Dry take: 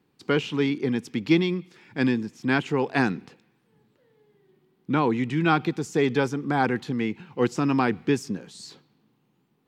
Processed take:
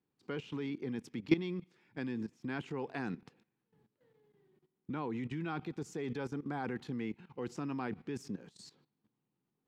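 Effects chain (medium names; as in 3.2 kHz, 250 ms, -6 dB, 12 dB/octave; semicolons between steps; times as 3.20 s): treble shelf 2.4 kHz -4.5 dB; level held to a coarse grid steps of 16 dB; trim -5.5 dB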